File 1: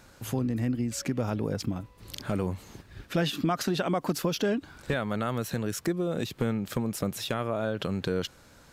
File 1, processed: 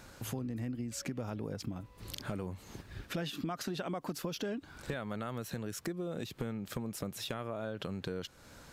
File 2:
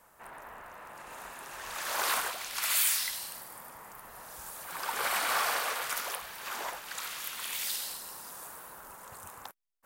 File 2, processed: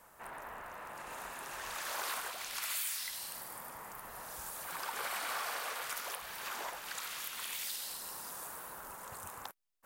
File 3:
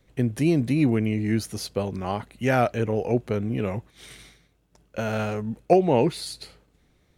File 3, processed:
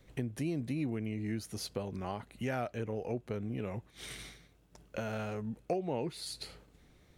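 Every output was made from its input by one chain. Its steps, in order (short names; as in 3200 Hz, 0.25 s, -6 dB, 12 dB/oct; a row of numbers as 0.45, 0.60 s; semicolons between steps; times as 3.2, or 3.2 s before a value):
compressor 2.5:1, threshold -41 dBFS; gain +1 dB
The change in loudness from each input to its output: -9.5, -8.0, -13.5 LU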